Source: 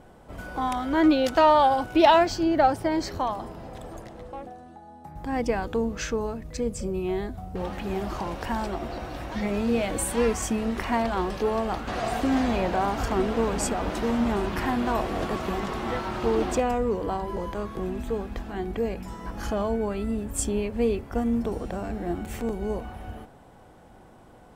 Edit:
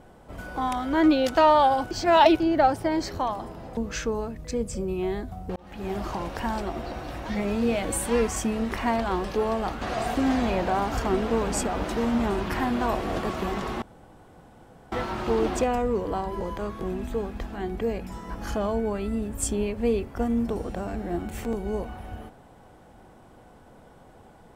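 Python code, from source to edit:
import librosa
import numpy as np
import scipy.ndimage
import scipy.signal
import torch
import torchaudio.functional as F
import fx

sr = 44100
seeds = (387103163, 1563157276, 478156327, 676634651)

y = fx.edit(x, sr, fx.reverse_span(start_s=1.91, length_s=0.49),
    fx.cut(start_s=3.77, length_s=2.06),
    fx.fade_in_span(start_s=7.62, length_s=0.4),
    fx.insert_room_tone(at_s=15.88, length_s=1.1), tone=tone)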